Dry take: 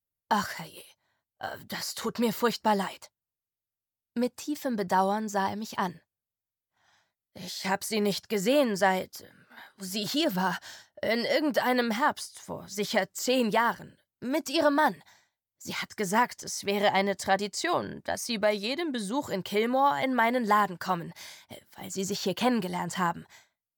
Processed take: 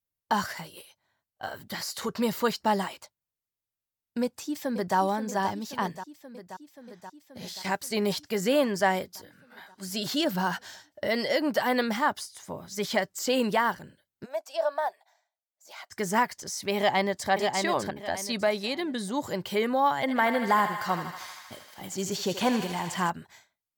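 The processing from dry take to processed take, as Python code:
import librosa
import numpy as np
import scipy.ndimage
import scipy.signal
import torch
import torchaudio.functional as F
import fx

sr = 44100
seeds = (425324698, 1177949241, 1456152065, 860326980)

y = fx.echo_throw(x, sr, start_s=4.22, length_s=0.75, ms=530, feedback_pct=75, wet_db=-11.0)
y = fx.law_mismatch(y, sr, coded='A', at=(7.49, 7.92))
y = fx.ladder_highpass(y, sr, hz=610.0, resonance_pct=70, at=(14.24, 15.9), fade=0.02)
y = fx.echo_throw(y, sr, start_s=16.76, length_s=0.54, ms=600, feedback_pct=30, wet_db=-4.5)
y = fx.echo_thinned(y, sr, ms=78, feedback_pct=85, hz=610.0, wet_db=-9, at=(20.0, 23.1))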